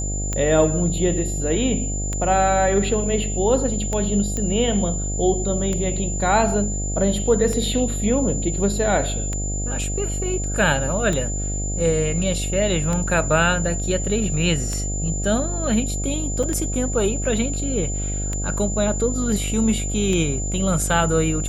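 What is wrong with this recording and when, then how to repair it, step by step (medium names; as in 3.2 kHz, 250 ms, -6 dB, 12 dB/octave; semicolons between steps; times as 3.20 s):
buzz 50 Hz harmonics 15 -26 dBFS
tick 33 1/3 rpm -12 dBFS
whine 7.1 kHz -28 dBFS
4.37 s: pop -13 dBFS
16.43 s: dropout 4.6 ms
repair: de-click; band-stop 7.1 kHz, Q 30; de-hum 50 Hz, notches 15; interpolate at 16.43 s, 4.6 ms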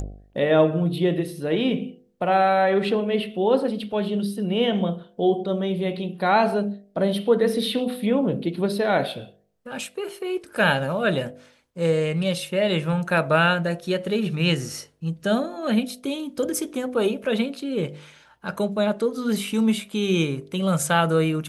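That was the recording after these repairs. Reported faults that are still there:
nothing left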